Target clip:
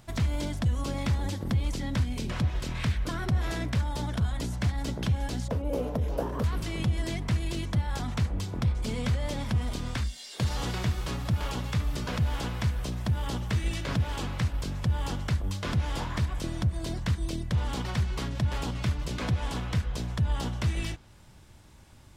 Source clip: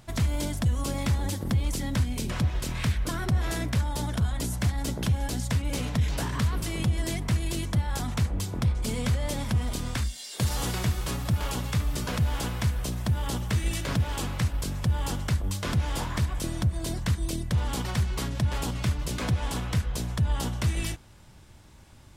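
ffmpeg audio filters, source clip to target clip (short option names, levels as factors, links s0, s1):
-filter_complex "[0:a]asettb=1/sr,asplit=3[s0][s1][s2];[s0]atrim=end=5.484[s3];[s1]atrim=start=5.48:end=6.44,asetpts=PTS-STARTPTS,afade=t=in:d=0.004:c=qsin,afade=t=out:st=0.956:d=0.004:c=qsin,equalizer=f=125:t=o:w=1:g=-7,equalizer=f=500:t=o:w=1:g=12,equalizer=f=2000:t=o:w=1:g=-10,equalizer=f=4000:t=o:w=1:g=-9,equalizer=f=8000:t=o:w=1:g=-12[s4];[s2]atrim=start=6.436[s5];[s3][s4]acrossfade=d=0.004:c1=hsin:c2=qsin[s6];[s6][s5]acrossfade=d=0.004:c1=qsin:c2=hsin,acrossover=split=6100[s7][s8];[s8]acompressor=threshold=0.00251:ratio=6[s9];[s7][s9]amix=inputs=2:normalize=0,volume=0.841"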